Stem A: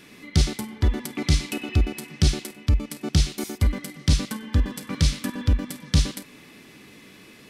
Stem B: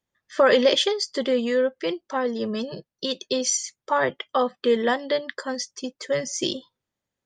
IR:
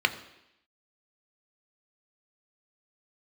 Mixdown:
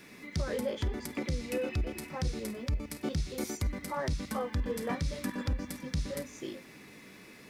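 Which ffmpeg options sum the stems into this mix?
-filter_complex "[0:a]acrossover=split=390[link_01][link_02];[link_02]acompressor=threshold=-31dB:ratio=6[link_03];[link_01][link_03]amix=inputs=2:normalize=0,acrusher=bits=10:mix=0:aa=0.000001,volume=-4dB,asplit=2[link_04][link_05];[link_05]volume=-21dB[link_06];[1:a]equalizer=frequency=4400:width=0.83:gain=-13,flanger=delay=17.5:depth=3.4:speed=2.5,volume=-10dB[link_07];[2:a]atrim=start_sample=2205[link_08];[link_06][link_08]afir=irnorm=-1:irlink=0[link_09];[link_04][link_07][link_09]amix=inputs=3:normalize=0,alimiter=limit=-23dB:level=0:latency=1:release=239"

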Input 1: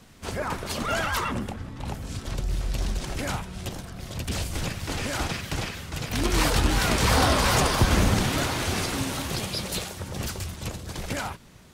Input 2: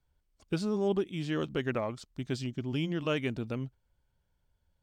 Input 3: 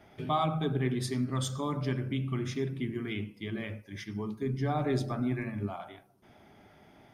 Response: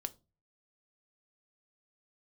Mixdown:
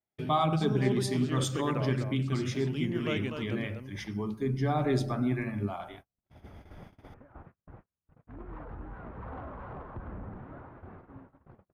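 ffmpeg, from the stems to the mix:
-filter_complex "[0:a]lowpass=frequency=1400:width=0.5412,lowpass=frequency=1400:width=1.3066,asoftclip=type=tanh:threshold=-15dB,adelay=2150,volume=-18.5dB[link_01];[1:a]volume=-4dB,asplit=2[link_02][link_03];[link_03]volume=-6.5dB[link_04];[2:a]volume=2dB,asplit=2[link_05][link_06];[link_06]apad=whole_len=612498[link_07];[link_01][link_07]sidechaincompress=threshold=-37dB:ratio=8:attack=16:release=315[link_08];[link_04]aecho=0:1:246:1[link_09];[link_08][link_02][link_05][link_09]amix=inputs=4:normalize=0,agate=range=-40dB:threshold=-48dB:ratio=16:detection=peak"

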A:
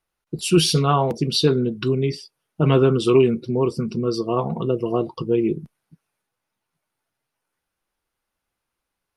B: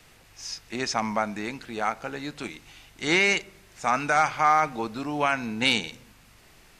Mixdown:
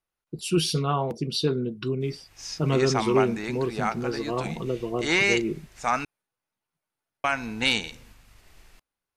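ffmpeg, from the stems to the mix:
ffmpeg -i stem1.wav -i stem2.wav -filter_complex "[0:a]volume=-7dB[link_01];[1:a]agate=range=-33dB:threshold=-51dB:ratio=3:detection=peak,asubboost=boost=3:cutoff=84,adelay=2000,volume=-0.5dB,asplit=3[link_02][link_03][link_04];[link_02]atrim=end=6.05,asetpts=PTS-STARTPTS,afade=type=out:start_time=6.046:duration=0.004:curve=hsin[link_05];[link_03]atrim=start=6.05:end=7.24,asetpts=PTS-STARTPTS,volume=0[link_06];[link_04]atrim=start=7.24,asetpts=PTS-STARTPTS,afade=type=in:duration=0.004:curve=hsin[link_07];[link_05][link_06][link_07]concat=n=3:v=0:a=1[link_08];[link_01][link_08]amix=inputs=2:normalize=0" out.wav

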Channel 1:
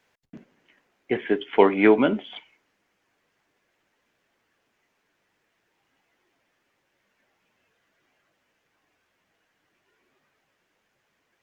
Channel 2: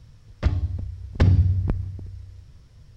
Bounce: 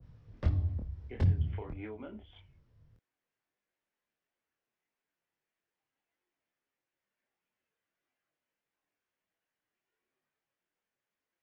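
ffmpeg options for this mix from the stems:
ffmpeg -i stem1.wav -i stem2.wav -filter_complex "[0:a]acompressor=threshold=-20dB:ratio=6,volume=-16.5dB,asplit=2[link_01][link_02];[1:a]equalizer=frequency=350:width=0.36:gain=4.5,adynamicsmooth=sensitivity=2:basefreq=3400,volume=-5dB,afade=type=out:start_time=1.02:duration=0.67:silence=0.375837[link_03];[link_02]apad=whole_len=130631[link_04];[link_03][link_04]sidechaincompress=threshold=-45dB:ratio=8:attack=16:release=138[link_05];[link_01][link_05]amix=inputs=2:normalize=0,acrossover=split=140|3000[link_06][link_07][link_08];[link_07]acompressor=threshold=-35dB:ratio=6[link_09];[link_06][link_09][link_08]amix=inputs=3:normalize=0,flanger=delay=22.5:depth=5.6:speed=1.6,adynamicequalizer=threshold=0.00112:dfrequency=1500:dqfactor=0.7:tfrequency=1500:tqfactor=0.7:attack=5:release=100:ratio=0.375:range=2.5:mode=cutabove:tftype=highshelf" out.wav

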